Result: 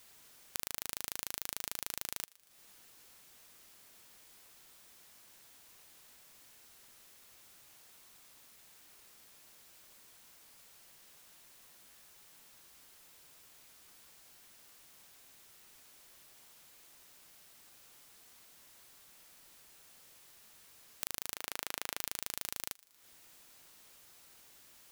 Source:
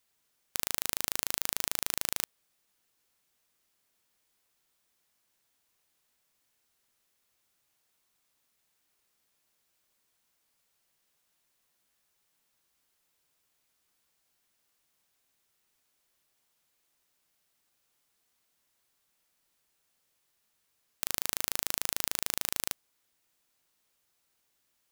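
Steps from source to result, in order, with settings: 21.36–21.98 tone controls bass -9 dB, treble -8 dB; compressor 20:1, threshold -47 dBFS, peak gain reduction 24 dB; thinning echo 0.117 s, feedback 50%, high-pass 1200 Hz, level -22.5 dB; gain +16 dB

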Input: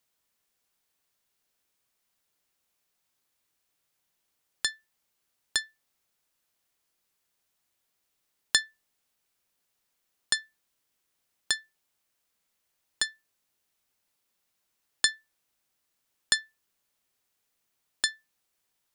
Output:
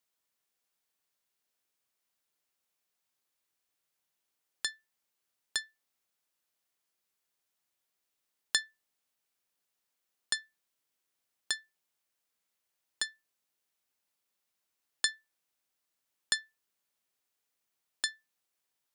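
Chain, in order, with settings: low shelf 130 Hz -8 dB; gain -5.5 dB

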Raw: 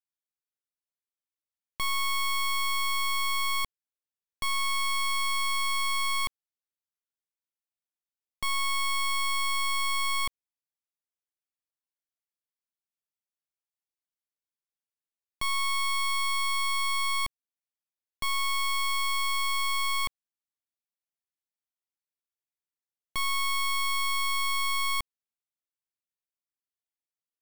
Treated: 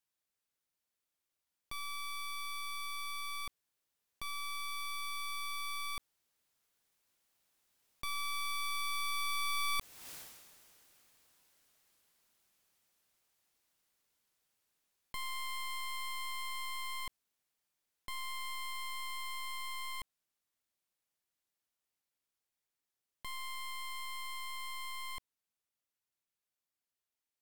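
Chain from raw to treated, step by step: Doppler pass-by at 10.13, 16 m/s, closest 1.1 m; fast leveller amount 70%; gain +9.5 dB

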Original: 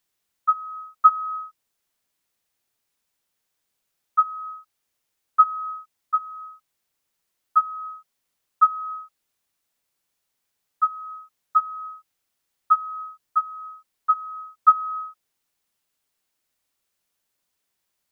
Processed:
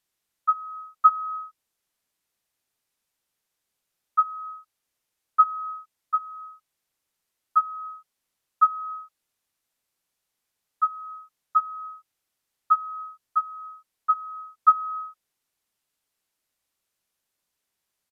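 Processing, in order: downsampling 32000 Hz; gain -2 dB

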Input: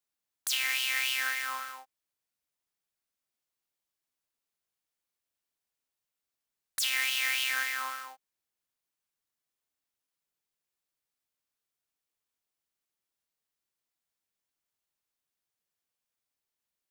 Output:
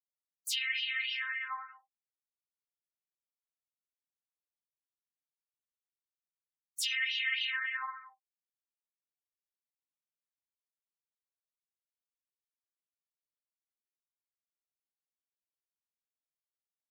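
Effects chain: expander -34 dBFS; spectral gate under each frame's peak -15 dB strong; comb 2.8 ms, depth 54%; detuned doubles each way 14 cents

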